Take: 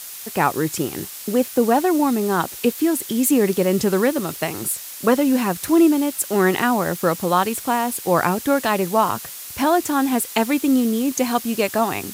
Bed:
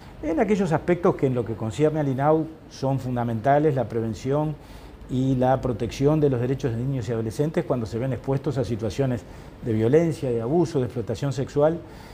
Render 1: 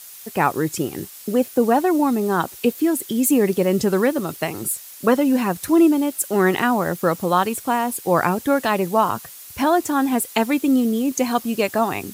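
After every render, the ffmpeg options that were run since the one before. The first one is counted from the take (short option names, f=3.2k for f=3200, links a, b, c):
-af "afftdn=nr=7:nf=-35"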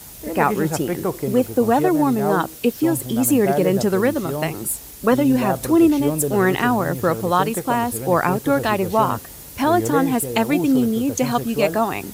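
-filter_complex "[1:a]volume=-3.5dB[a];[0:a][a]amix=inputs=2:normalize=0"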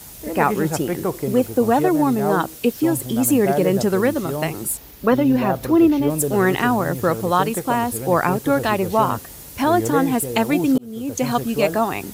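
-filter_complex "[0:a]asettb=1/sr,asplit=3[a][b][c];[a]atrim=end=4.774[d];[b]atrim=start=4.77:end=6.1,asetpts=PTS-STARTPTS,afade=t=in:d=0.004:c=qsin,afade=t=out:st=1.326:d=0.004:c=qsin,equalizer=f=8.6k:w=1:g=-12[e];[c]atrim=start=6.096[f];[d][e]acrossfade=d=0.004:c1=hsin:c2=qsin[g];[g][f]acrossfade=d=0.004:c1=qsin:c2=hsin,asplit=2[h][i];[h]atrim=end=10.78,asetpts=PTS-STARTPTS,afade=t=out:st=10.776:d=0.004:c=hsin[j];[i]atrim=start=10.78,asetpts=PTS-STARTPTS,afade=t=in:d=0.52[k];[j][k]concat=n=2:v=0:a=1"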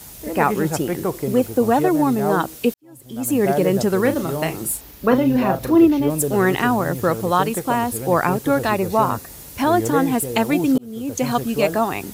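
-filter_complex "[0:a]asettb=1/sr,asplit=3[a][b][c];[a]atrim=end=4.014[d];[b]atrim=start=4.01:end=5.85,asetpts=PTS-STARTPTS,afade=t=in:d=0.004:c=qsin,afade=t=out:st=1.836:d=0.004:c=qsin,asplit=2[e][f];[f]adelay=36,volume=-9dB[g];[e][g]amix=inputs=2:normalize=0,atrim=end_sample=81144[h];[c]atrim=start=5.846[i];[d][h]acrossfade=d=0.004:c1=hsin:c2=qsin[j];[j][i]acrossfade=d=0.004:c1=qsin:c2=hsin,asettb=1/sr,asplit=3[k][l][m];[k]atrim=end=8.644[n];[l]atrim=start=8.64:end=9.33,asetpts=PTS-STARTPTS,afade=t=in:d=0.004:c=qsin,afade=t=out:st=0.686:d=0.004:c=qsin,bandreject=f=3.1k:w=7.2[o];[m]atrim=start=9.326[p];[n][o]acrossfade=d=0.004:c1=hsin:c2=qsin[q];[q][p]acrossfade=d=0.004:c1=qsin:c2=hsin,asplit=2[r][s];[r]atrim=end=2.74,asetpts=PTS-STARTPTS,afade=t=out:st=2.736:d=0.004:c=hsin[t];[s]atrim=start=2.74,asetpts=PTS-STARTPTS,afade=t=in:d=0.71:c=qua[u];[t][u]concat=n=2:v=0:a=1"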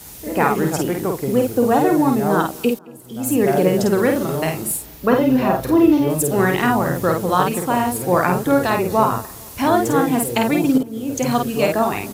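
-filter_complex "[0:a]asplit=2[a][b];[b]adelay=50,volume=-4dB[c];[a][c]amix=inputs=2:normalize=0,asplit=2[d][e];[e]adelay=221,lowpass=f=1.8k:p=1,volume=-23dB,asplit=2[f][g];[g]adelay=221,lowpass=f=1.8k:p=1,volume=0.51,asplit=2[h][i];[i]adelay=221,lowpass=f=1.8k:p=1,volume=0.51[j];[d][f][h][j]amix=inputs=4:normalize=0"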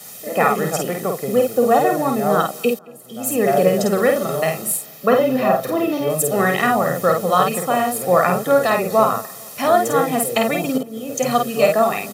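-af "highpass=f=170:w=0.5412,highpass=f=170:w=1.3066,aecho=1:1:1.6:0.68"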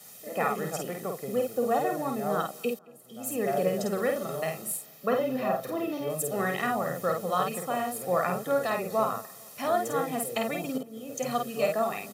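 -af "volume=-11.5dB"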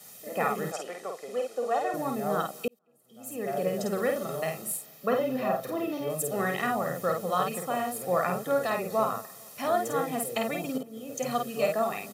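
-filter_complex "[0:a]asettb=1/sr,asplit=3[a][b][c];[a]atrim=end=0.724[d];[b]atrim=start=0.72:end=1.94,asetpts=PTS-STARTPTS,afade=t=in:d=0.004:c=qsin,afade=t=out:st=1.216:d=0.004:c=qsin,highpass=470,lowpass=7.6k[e];[c]atrim=start=1.936[f];[d][e]acrossfade=d=0.004:c1=hsin:c2=qsin[g];[g][f]acrossfade=d=0.004:c1=qsin:c2=hsin,asplit=2[h][i];[h]atrim=end=2.68,asetpts=PTS-STARTPTS,afade=t=out:st=2.676:d=0.004:c=hsin[j];[i]atrim=start=2.68,asetpts=PTS-STARTPTS,afade=t=in:d=1.27[k];[j][k]concat=n=2:v=0:a=1"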